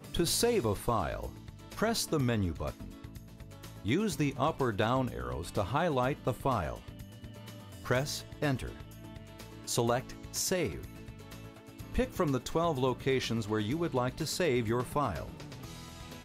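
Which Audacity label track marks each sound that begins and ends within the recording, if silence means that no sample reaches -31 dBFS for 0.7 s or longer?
3.860000	6.750000	sound
7.880000	8.690000	sound
9.680000	10.740000	sound
11.950000	15.230000	sound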